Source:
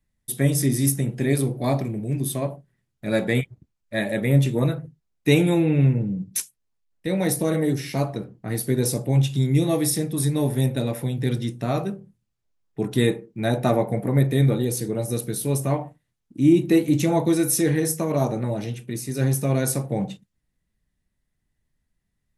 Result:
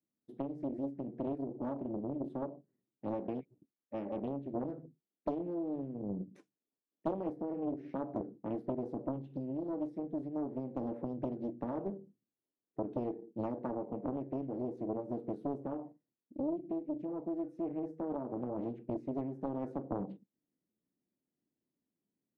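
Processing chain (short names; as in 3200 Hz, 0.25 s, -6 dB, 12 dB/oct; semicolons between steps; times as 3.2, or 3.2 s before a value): compressor 16:1, threshold -26 dBFS, peak gain reduction 15.5 dB; ladder band-pass 350 Hz, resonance 45%; vocal rider 0.5 s; Doppler distortion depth 0.91 ms; gain +4.5 dB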